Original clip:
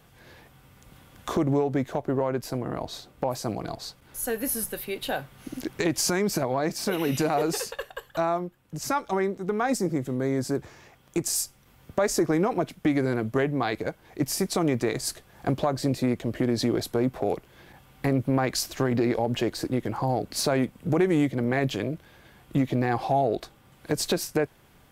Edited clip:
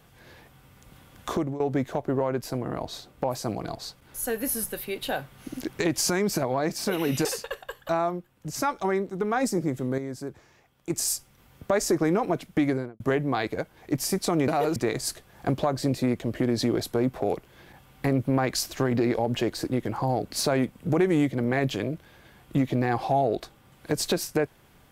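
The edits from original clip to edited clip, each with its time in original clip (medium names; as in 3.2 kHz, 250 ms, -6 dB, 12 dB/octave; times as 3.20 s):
1.31–1.60 s: fade out, to -16.5 dB
7.25–7.53 s: move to 14.76 s
10.26–11.18 s: gain -8 dB
12.93–13.28 s: studio fade out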